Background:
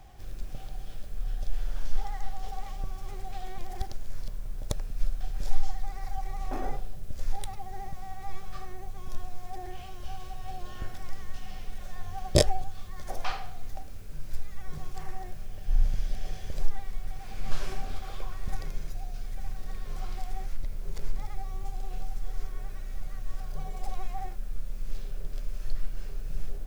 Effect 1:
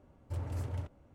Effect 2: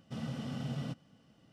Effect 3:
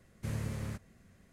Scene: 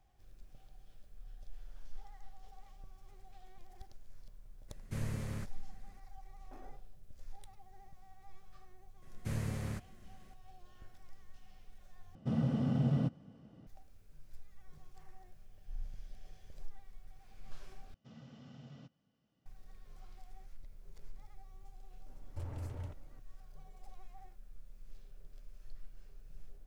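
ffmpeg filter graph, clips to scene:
-filter_complex "[3:a]asplit=2[a][b];[2:a]asplit=2[c][d];[0:a]volume=-19dB[e];[c]tiltshelf=f=1.3k:g=8[f];[d]aresample=16000,aresample=44100[g];[1:a]alimiter=level_in=9dB:limit=-24dB:level=0:latency=1:release=180,volume=-9dB[h];[e]asplit=3[i][j][k];[i]atrim=end=12.154[l];[f]atrim=end=1.52,asetpts=PTS-STARTPTS,volume=-0.5dB[m];[j]atrim=start=13.666:end=17.944[n];[g]atrim=end=1.52,asetpts=PTS-STARTPTS,volume=-15.5dB[o];[k]atrim=start=19.456[p];[a]atrim=end=1.32,asetpts=PTS-STARTPTS,volume=-2dB,afade=t=in:d=0.004:c=hsin,afade=t=out:st=1.316:d=0.004:c=hsin,adelay=4680[q];[b]atrim=end=1.32,asetpts=PTS-STARTPTS,volume=-0.5dB,afade=t=in:d=0.004:c=hsin,afade=t=out:st=1.316:d=0.004:c=hsin,adelay=9020[r];[h]atrim=end=1.14,asetpts=PTS-STARTPTS,volume=-2dB,afade=t=in:d=0.004:c=hsin,afade=t=out:st=1.136:d=0.004:c=hsin,adelay=22060[s];[l][m]acrossfade=d=0.004:c1=hsin:c2=hsin[t];[t][n]acrossfade=d=0.004:c1=hsin:c2=hsin[u];[u][o]acrossfade=d=0.004:c1=hsin:c2=hsin[v];[v][p]acrossfade=d=0.004:c1=hsin:c2=hsin[w];[w][q][r][s]amix=inputs=4:normalize=0"

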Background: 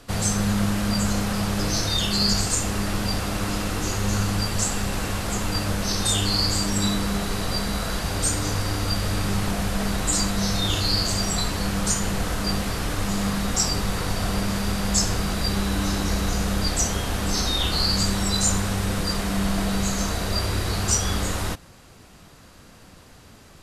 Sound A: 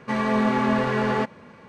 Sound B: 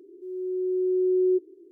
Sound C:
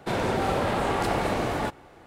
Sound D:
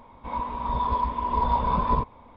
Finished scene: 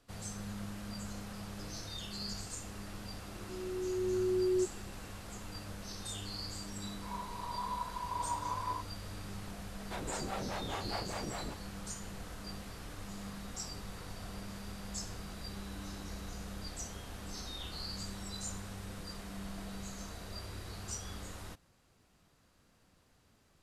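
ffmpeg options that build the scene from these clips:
-filter_complex "[0:a]volume=-20dB[a];[4:a]highpass=750[b];[3:a]acrossover=split=470[c][d];[c]aeval=exprs='val(0)*(1-1/2+1/2*cos(2*PI*4.9*n/s))':c=same[e];[d]aeval=exprs='val(0)*(1-1/2-1/2*cos(2*PI*4.9*n/s))':c=same[f];[e][f]amix=inputs=2:normalize=0[g];[2:a]atrim=end=1.71,asetpts=PTS-STARTPTS,volume=-8.5dB,afade=t=in:d=0.004:c=hsin,afade=t=out:st=1.706:d=0.004:c=hsin,adelay=3270[h];[b]atrim=end=2.36,asetpts=PTS-STARTPTS,volume=-11.5dB,afade=t=in:d=0.004:c=hsin,afade=t=out:st=2.356:d=0.004:c=hsin,adelay=6780[i];[g]atrim=end=2.06,asetpts=PTS-STARTPTS,volume=-10dB,afade=t=in:d=0.004:c=hsin,afade=t=out:st=2.056:d=0.004:c=hsin,adelay=9840[j];[a][h][i][j]amix=inputs=4:normalize=0"

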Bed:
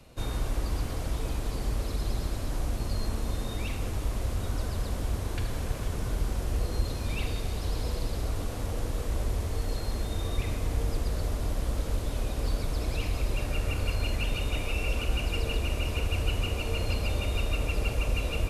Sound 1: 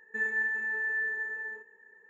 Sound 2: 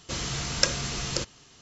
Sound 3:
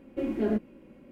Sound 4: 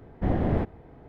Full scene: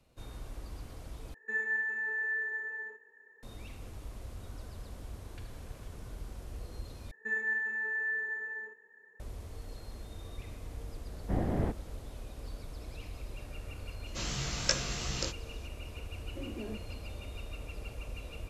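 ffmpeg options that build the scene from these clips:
-filter_complex "[1:a]asplit=2[a][b];[0:a]volume=-14dB[c];[a]highpass=f=230:w=0.5412,highpass=f=230:w=1.3066[d];[2:a]flanger=delay=15:depth=5:speed=2.8[e];[3:a]alimiter=limit=-24dB:level=0:latency=1:release=71[f];[c]asplit=3[g][h][i];[g]atrim=end=1.344[j];[d]atrim=end=2.09,asetpts=PTS-STARTPTS,volume=-2.5dB[k];[h]atrim=start=3.426:end=7.114[l];[b]atrim=end=2.09,asetpts=PTS-STARTPTS,volume=-2.5dB[m];[i]atrim=start=9.196[n];[4:a]atrim=end=1.08,asetpts=PTS-STARTPTS,volume=-6.5dB,afade=t=in:d=0.004:c=hsin,afade=t=out:st=1.076:d=0.004:c=hsin,adelay=11070[o];[e]atrim=end=1.61,asetpts=PTS-STARTPTS,volume=-2.5dB,afade=t=in:d=0.004:c=hsin,afade=t=out:st=1.606:d=0.004:c=hsin,adelay=14060[p];[f]atrim=end=1.11,asetpts=PTS-STARTPTS,volume=-10.5dB,afade=t=in:d=0.004:c=hsin,afade=t=out:st=1.106:d=0.004:c=hsin,adelay=16190[q];[j][k]acrossfade=d=0.004:c1=hsin:c2=hsin[r];[r][l]acrossfade=d=0.004:c1=hsin:c2=hsin[s];[s][m]acrossfade=d=0.004:c1=hsin:c2=hsin[t];[t][n]acrossfade=d=0.004:c1=hsin:c2=hsin[u];[u][o][p][q]amix=inputs=4:normalize=0"

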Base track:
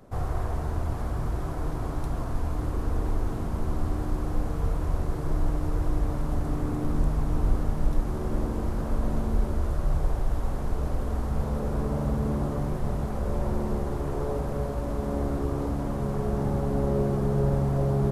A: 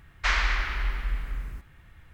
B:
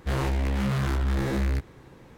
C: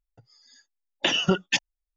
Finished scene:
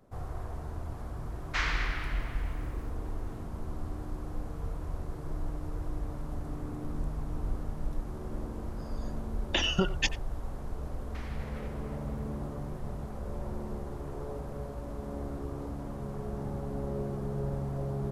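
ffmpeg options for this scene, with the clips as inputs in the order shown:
-filter_complex "[1:a]asplit=2[a][b];[0:a]volume=-9.5dB[c];[3:a]asplit=2[d][e];[e]adelay=90,highpass=300,lowpass=3.4k,asoftclip=type=hard:threshold=-18.5dB,volume=-14dB[f];[d][f]amix=inputs=2:normalize=0[g];[b]acompressor=threshold=-29dB:ratio=6:attack=3.2:release=140:knee=1:detection=peak[h];[a]atrim=end=2.13,asetpts=PTS-STARTPTS,volume=-6dB,afade=t=in:d=0.004:c=hsin,afade=t=out:st=2.126:d=0.004:c=hsin,adelay=1300[i];[g]atrim=end=1.96,asetpts=PTS-STARTPTS,volume=-5.5dB,afade=t=in:d=0.004:c=hsin,afade=t=out:st=1.956:d=0.004:c=hsin,adelay=374850S[j];[h]atrim=end=2.13,asetpts=PTS-STARTPTS,volume=-16dB,afade=t=in:d=0.004:c=hsin,afade=t=out:st=2.126:d=0.004:c=hsin,adelay=10910[k];[c][i][j][k]amix=inputs=4:normalize=0"

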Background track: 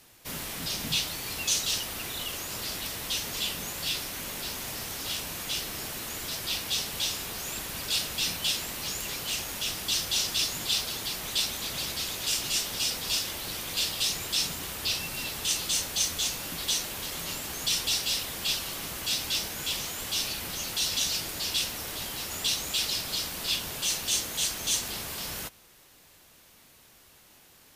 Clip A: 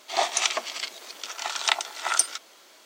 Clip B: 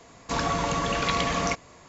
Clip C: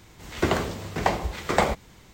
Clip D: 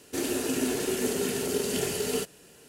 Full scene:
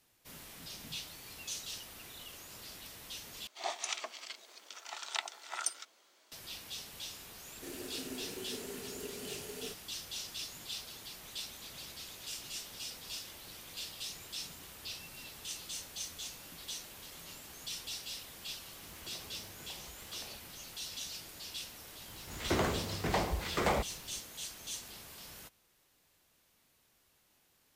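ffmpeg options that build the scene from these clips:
-filter_complex "[3:a]asplit=2[a][b];[0:a]volume=-14.5dB[c];[a]acompressor=threshold=-36dB:ratio=6:attack=3.2:release=140:knee=1:detection=peak[d];[b]asoftclip=type=tanh:threshold=-20.5dB[e];[c]asplit=2[f][g];[f]atrim=end=3.474[h];[1:a]atrim=end=2.85,asetpts=PTS-STARTPTS,volume=-13.5dB[i];[g]atrim=start=6.316[j];[4:a]atrim=end=2.68,asetpts=PTS-STARTPTS,volume=-16dB,afade=t=in:d=0.004:c=hsin,afade=t=out:st=2.676:d=0.004:c=hsin,adelay=7490[k];[d]atrim=end=2.13,asetpts=PTS-STARTPTS,volume=-16dB,afade=t=in:d=0.004:c=hsin,afade=t=out:st=2.126:d=0.004:c=hsin,adelay=18640[l];[e]atrim=end=2.13,asetpts=PTS-STARTPTS,volume=-4dB,afade=t=in:d=0.004:c=hsin,afade=t=out:st=2.126:d=0.004:c=hsin,adelay=22080[m];[h][i]acrossfade=d=0.004:c1=hsin:c2=hsin[n];[n][j]acrossfade=d=0.004:c1=hsin:c2=hsin[o];[o][k][l][m]amix=inputs=4:normalize=0"

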